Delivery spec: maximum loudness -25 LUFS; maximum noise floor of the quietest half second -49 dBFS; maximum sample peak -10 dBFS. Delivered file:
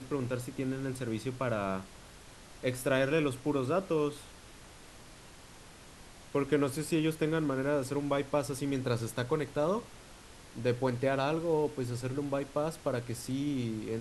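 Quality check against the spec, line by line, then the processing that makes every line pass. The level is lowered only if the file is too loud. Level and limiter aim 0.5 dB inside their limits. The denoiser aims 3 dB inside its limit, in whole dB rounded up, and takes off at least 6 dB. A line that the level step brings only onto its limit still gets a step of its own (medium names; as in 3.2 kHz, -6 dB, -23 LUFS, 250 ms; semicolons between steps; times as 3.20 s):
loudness -32.5 LUFS: pass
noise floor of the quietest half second -52 dBFS: pass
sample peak -14.0 dBFS: pass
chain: none needed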